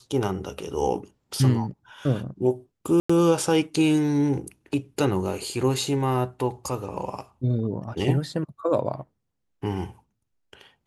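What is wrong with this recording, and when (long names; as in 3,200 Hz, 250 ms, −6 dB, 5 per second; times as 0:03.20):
0:03.00–0:03.10: drop-out 95 ms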